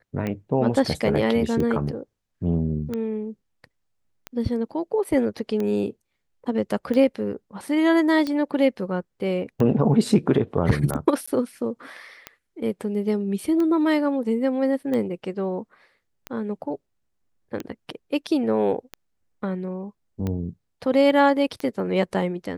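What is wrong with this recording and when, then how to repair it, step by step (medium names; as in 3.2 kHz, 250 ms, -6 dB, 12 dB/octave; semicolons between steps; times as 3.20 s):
tick 45 rpm -16 dBFS
11.26–11.28 s: dropout 15 ms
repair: de-click; interpolate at 11.26 s, 15 ms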